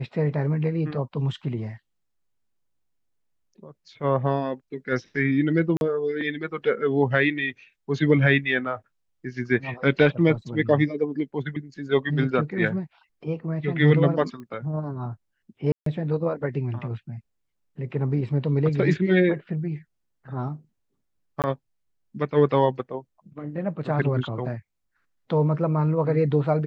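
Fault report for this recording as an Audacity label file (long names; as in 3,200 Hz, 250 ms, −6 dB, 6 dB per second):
5.770000	5.810000	drop-out 41 ms
14.400000	14.400000	click −29 dBFS
15.720000	15.860000	drop-out 143 ms
21.420000	21.440000	drop-out 18 ms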